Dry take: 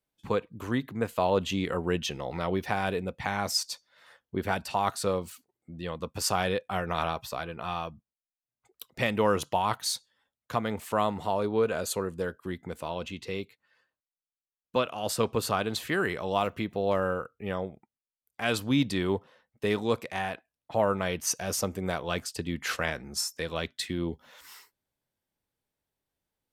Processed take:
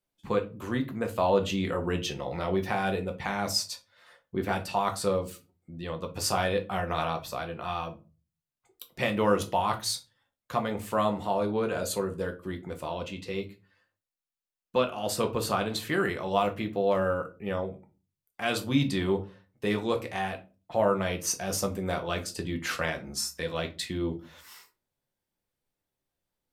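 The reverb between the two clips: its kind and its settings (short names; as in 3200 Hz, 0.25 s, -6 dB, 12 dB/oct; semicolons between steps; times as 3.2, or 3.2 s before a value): shoebox room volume 130 m³, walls furnished, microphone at 0.91 m; gain -1.5 dB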